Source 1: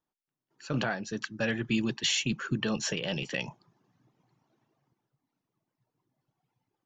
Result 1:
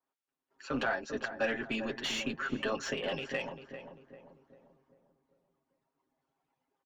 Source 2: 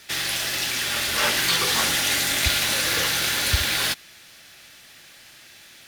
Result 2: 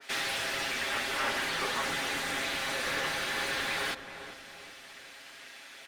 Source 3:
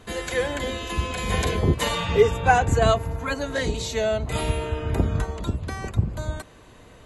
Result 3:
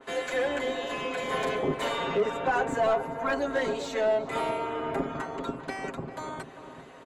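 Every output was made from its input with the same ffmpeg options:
-filter_complex "[0:a]highpass=f=180:w=0.5412,highpass=f=180:w=1.3066,equalizer=f=8700:t=o:w=0.69:g=4.5,aecho=1:1:7.4:0.84,alimiter=limit=0.266:level=0:latency=1:release=84,asplit=2[s0][s1];[s1]highpass=f=720:p=1,volume=5.01,asoftclip=type=tanh:threshold=0.266[s2];[s0][s2]amix=inputs=2:normalize=0,lowpass=f=1400:p=1,volume=0.501,tremolo=f=220:d=0.462,asplit=2[s3][s4];[s4]adelay=395,lowpass=f=1100:p=1,volume=0.376,asplit=2[s5][s6];[s6]adelay=395,lowpass=f=1100:p=1,volume=0.5,asplit=2[s7][s8];[s8]adelay=395,lowpass=f=1100:p=1,volume=0.5,asplit=2[s9][s10];[s10]adelay=395,lowpass=f=1100:p=1,volume=0.5,asplit=2[s11][s12];[s12]adelay=395,lowpass=f=1100:p=1,volume=0.5,asplit=2[s13][s14];[s14]adelay=395,lowpass=f=1100:p=1,volume=0.5[s15];[s5][s7][s9][s11][s13][s15]amix=inputs=6:normalize=0[s16];[s3][s16]amix=inputs=2:normalize=0,adynamicequalizer=threshold=0.01:dfrequency=2400:dqfactor=0.7:tfrequency=2400:tqfactor=0.7:attack=5:release=100:ratio=0.375:range=2:mode=cutabove:tftype=highshelf,volume=0.668"

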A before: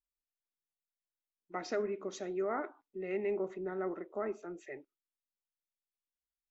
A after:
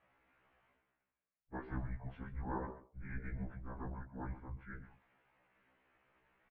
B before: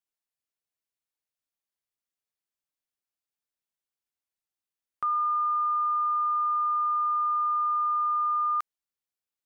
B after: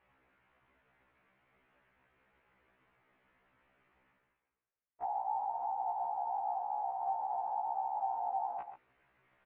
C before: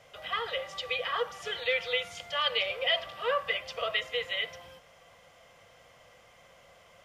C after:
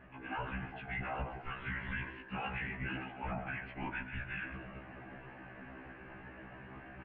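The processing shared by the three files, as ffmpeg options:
-filter_complex "[0:a]areverse,acompressor=mode=upward:threshold=0.0224:ratio=2.5,areverse,highpass=f=350:t=q:w=0.5412,highpass=f=350:t=q:w=1.307,lowpass=f=2700:t=q:w=0.5176,lowpass=f=2700:t=q:w=0.7071,lowpass=f=2700:t=q:w=1.932,afreqshift=-400,afftfilt=real='hypot(re,im)*cos(2*PI*random(0))':imag='hypot(re,im)*sin(2*PI*random(1))':win_size=512:overlap=0.75,asplit=2[s0][s1];[s1]aecho=0:1:132:0.188[s2];[s0][s2]amix=inputs=2:normalize=0,alimiter=level_in=2.66:limit=0.0631:level=0:latency=1:release=17,volume=0.376,afftfilt=real='re*1.73*eq(mod(b,3),0)':imag='im*1.73*eq(mod(b,3),0)':win_size=2048:overlap=0.75,volume=1.68"

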